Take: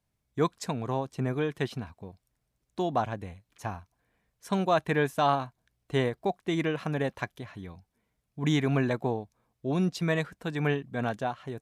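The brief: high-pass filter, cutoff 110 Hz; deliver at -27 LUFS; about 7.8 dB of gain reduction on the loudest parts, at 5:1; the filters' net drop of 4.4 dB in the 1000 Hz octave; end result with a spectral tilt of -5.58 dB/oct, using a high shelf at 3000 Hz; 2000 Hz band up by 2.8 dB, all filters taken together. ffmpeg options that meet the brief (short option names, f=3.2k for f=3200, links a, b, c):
-af "highpass=110,equalizer=f=1k:t=o:g=-7.5,equalizer=f=2k:t=o:g=8.5,highshelf=f=3k:g=-8,acompressor=threshold=-30dB:ratio=5,volume=10dB"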